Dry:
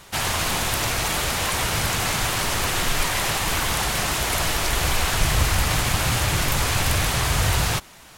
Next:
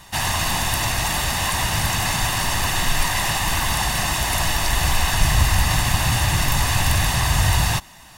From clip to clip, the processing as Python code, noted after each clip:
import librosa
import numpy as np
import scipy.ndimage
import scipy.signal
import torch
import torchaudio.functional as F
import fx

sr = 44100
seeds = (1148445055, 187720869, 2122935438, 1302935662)

y = x + 0.58 * np.pad(x, (int(1.1 * sr / 1000.0), 0))[:len(x)]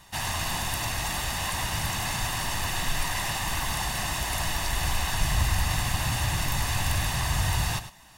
y = x + 10.0 ** (-12.0 / 20.0) * np.pad(x, (int(103 * sr / 1000.0), 0))[:len(x)]
y = y * 10.0 ** (-8.0 / 20.0)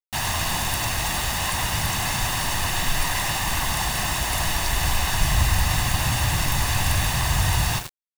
y = fx.quant_dither(x, sr, seeds[0], bits=6, dither='none')
y = y * 10.0 ** (4.5 / 20.0)